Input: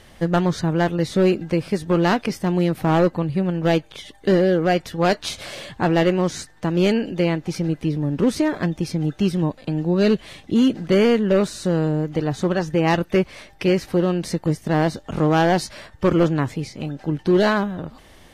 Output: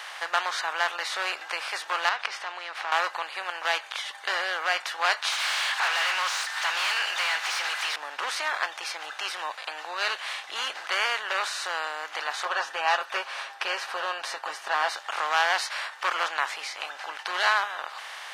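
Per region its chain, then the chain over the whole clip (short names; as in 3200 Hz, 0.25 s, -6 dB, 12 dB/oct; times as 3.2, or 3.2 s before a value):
2.09–2.92 LPF 4600 Hz + compressor, threshold -24 dBFS
5.32–7.96 differentiator + upward compressor, threshold -45 dBFS + overdrive pedal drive 36 dB, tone 2200 Hz, clips at -17 dBFS
12.45–14.89 tilt -2.5 dB/oct + notch 2100 Hz, Q 5.5 + comb 7.4 ms, depth 64%
whole clip: per-bin compression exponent 0.6; HPF 990 Hz 24 dB/oct; high shelf 6700 Hz -9 dB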